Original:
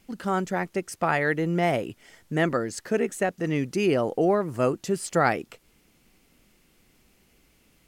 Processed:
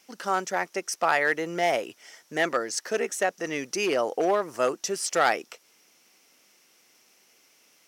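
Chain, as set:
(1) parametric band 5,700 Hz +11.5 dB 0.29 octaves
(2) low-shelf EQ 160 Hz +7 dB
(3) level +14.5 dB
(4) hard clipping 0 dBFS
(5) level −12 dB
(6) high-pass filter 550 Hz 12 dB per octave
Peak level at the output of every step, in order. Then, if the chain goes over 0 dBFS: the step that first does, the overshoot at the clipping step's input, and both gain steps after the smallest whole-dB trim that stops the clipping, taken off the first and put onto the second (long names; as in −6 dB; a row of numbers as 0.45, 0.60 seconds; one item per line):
−7.5, −8.0, +6.5, 0.0, −12.0, −8.0 dBFS
step 3, 6.5 dB
step 3 +7.5 dB, step 5 −5 dB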